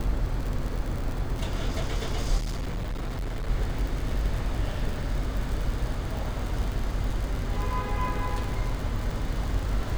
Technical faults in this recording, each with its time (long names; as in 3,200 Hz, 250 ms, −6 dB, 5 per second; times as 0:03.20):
surface crackle 73 per second −30 dBFS
0:02.37–0:03.50: clipping −27.5 dBFS